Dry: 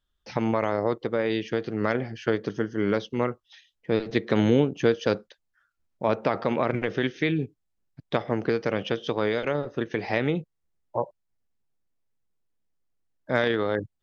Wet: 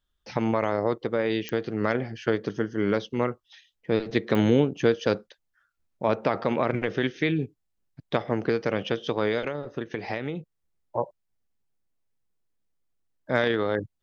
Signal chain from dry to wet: 9.43–10.98 s: compression, threshold -27 dBFS, peak gain reduction 8 dB; clicks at 1.49/4.35 s, -16 dBFS

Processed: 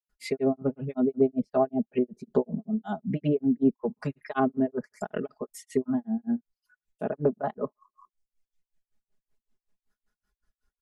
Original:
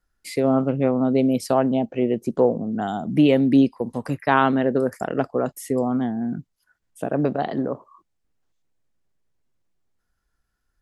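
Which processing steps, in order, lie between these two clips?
comb 4.8 ms, depth 93%; granulator 190 ms, grains 5.3 per s, pitch spread up and down by 0 st; reverb removal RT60 1.1 s; low-pass that closes with the level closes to 690 Hz, closed at -18.5 dBFS; trim -3 dB

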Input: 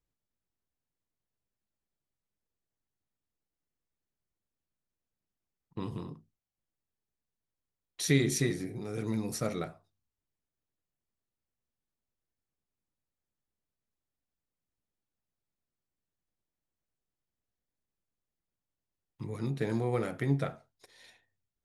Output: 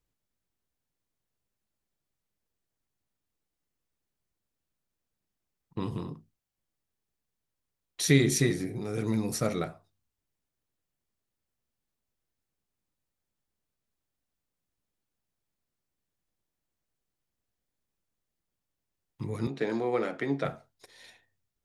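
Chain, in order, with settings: 19.47–20.45 s: three-band isolator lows -23 dB, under 210 Hz, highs -22 dB, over 6.7 kHz; trim +4 dB

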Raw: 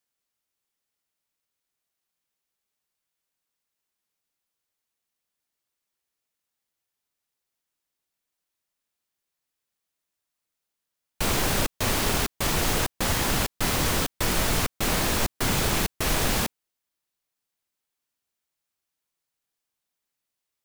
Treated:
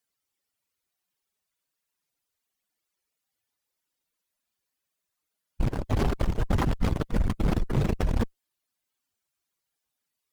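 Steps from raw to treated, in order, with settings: spectral contrast enhancement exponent 2.6; time stretch by phase-locked vocoder 0.5×; Chebyshev shaper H 6 -11 dB, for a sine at -16.5 dBFS; trim +2.5 dB

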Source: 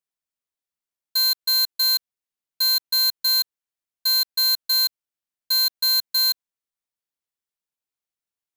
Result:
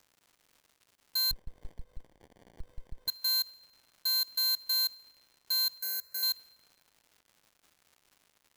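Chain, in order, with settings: peak limiter -26.5 dBFS, peak gain reduction 7.5 dB; peaking EQ 13 kHz +2.5 dB 0.58 oct; crackle 260 per s -48 dBFS; 5.78–6.23 s: static phaser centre 940 Hz, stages 6; FDN reverb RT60 2.4 s, low-frequency decay 0.9×, high-frequency decay 0.45×, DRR 17 dB; 1.31–3.08 s: sliding maximum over 33 samples; trim -2 dB

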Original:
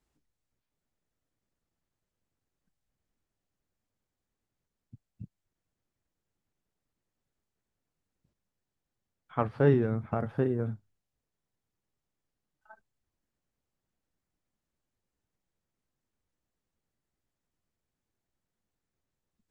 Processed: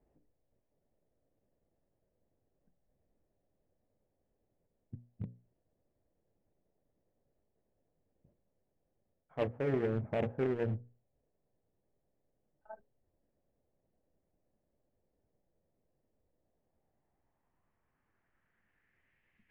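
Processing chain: reverse; compression 8:1, threshold -35 dBFS, peak gain reduction 17.5 dB; reverse; low-pass sweep 580 Hz -> 2.1 kHz, 16.36–19.25 s; in parallel at -10 dB: wavefolder -39 dBFS; on the sum: high-order bell 2.3 kHz +10 dB 1.1 oct; hum notches 60/120/180/240/300/360/420/480/540 Hz; loudspeaker Doppler distortion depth 0.36 ms; trim +3.5 dB

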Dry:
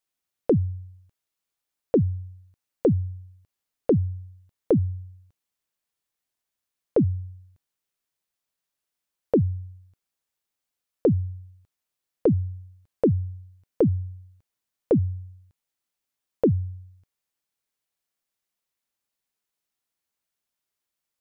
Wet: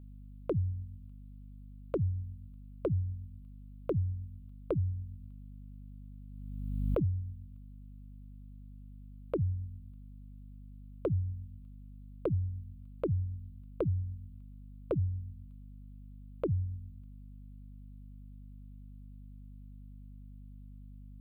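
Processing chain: in parallel at +2.5 dB: compression, threshold -28 dBFS, peak gain reduction 11.5 dB; on the sum: peaking EQ 470 Hz -9 dB 0.56 oct; static phaser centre 1.2 kHz, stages 8; hum 50 Hz, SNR 11 dB; 5.05–7.10 s: swell ahead of each attack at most 30 dB/s; trim -7.5 dB

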